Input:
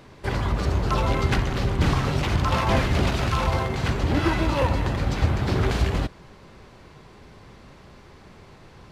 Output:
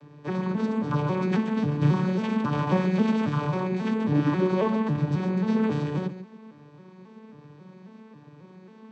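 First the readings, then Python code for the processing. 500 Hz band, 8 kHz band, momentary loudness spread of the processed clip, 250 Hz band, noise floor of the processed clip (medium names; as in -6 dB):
-1.0 dB, under -10 dB, 6 LU, +4.0 dB, -51 dBFS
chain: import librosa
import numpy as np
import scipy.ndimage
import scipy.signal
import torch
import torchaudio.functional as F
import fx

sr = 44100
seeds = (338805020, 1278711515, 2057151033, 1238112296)

y = fx.vocoder_arp(x, sr, chord='major triad', root=50, every_ms=271)
y = fx.notch_comb(y, sr, f0_hz=690.0)
y = y + 10.0 ** (-12.5 / 20.0) * np.pad(y, (int(141 * sr / 1000.0), 0))[:len(y)]
y = y * 10.0 ** (1.0 / 20.0)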